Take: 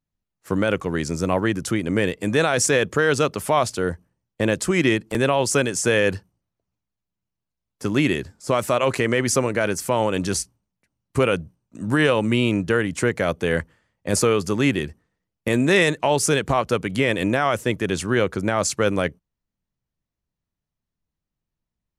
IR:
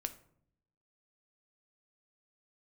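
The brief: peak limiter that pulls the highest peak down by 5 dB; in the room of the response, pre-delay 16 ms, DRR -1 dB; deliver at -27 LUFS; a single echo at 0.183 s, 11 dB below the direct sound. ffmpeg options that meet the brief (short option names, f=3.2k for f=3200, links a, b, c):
-filter_complex "[0:a]alimiter=limit=-13dB:level=0:latency=1,aecho=1:1:183:0.282,asplit=2[a][b];[1:a]atrim=start_sample=2205,adelay=16[c];[b][c]afir=irnorm=-1:irlink=0,volume=2dB[d];[a][d]amix=inputs=2:normalize=0,volume=-6dB"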